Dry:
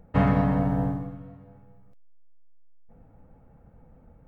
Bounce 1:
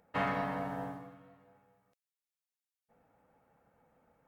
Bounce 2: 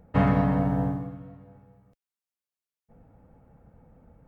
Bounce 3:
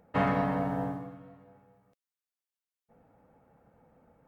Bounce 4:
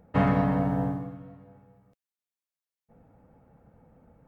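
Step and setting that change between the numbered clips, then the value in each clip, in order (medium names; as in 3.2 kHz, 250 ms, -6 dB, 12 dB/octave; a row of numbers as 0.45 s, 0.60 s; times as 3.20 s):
high-pass, cutoff frequency: 1.4 kHz, 43 Hz, 450 Hz, 130 Hz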